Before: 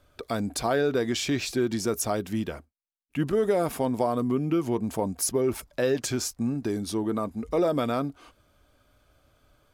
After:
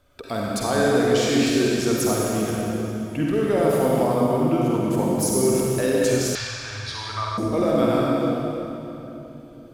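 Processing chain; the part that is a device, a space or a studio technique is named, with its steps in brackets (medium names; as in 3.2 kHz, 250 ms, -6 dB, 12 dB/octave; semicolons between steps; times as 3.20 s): tunnel (flutter echo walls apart 7.9 m, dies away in 0.32 s; reverberation RT60 3.3 s, pre-delay 47 ms, DRR -3.5 dB); 6.35–7.38 s: FFT filter 110 Hz 0 dB, 160 Hz -27 dB, 310 Hz -26 dB, 1.1 kHz +6 dB, 4.3 kHz +7 dB, 13 kHz -24 dB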